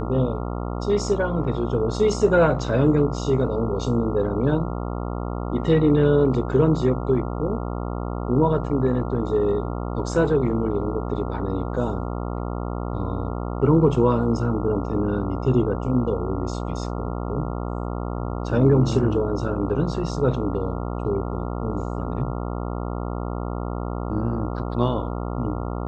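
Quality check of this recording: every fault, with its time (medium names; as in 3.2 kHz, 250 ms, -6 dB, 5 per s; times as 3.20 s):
buzz 60 Hz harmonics 23 -28 dBFS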